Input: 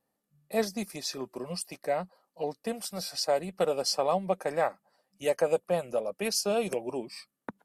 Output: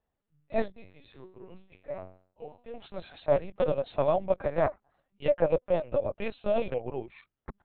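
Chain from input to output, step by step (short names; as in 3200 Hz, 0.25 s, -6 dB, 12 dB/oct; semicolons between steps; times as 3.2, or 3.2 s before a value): dynamic EQ 610 Hz, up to +5 dB, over -41 dBFS, Q 2.6; 0.71–2.74 resonator 93 Hz, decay 0.45 s, harmonics all, mix 90%; LPC vocoder at 8 kHz pitch kept; gain -1.5 dB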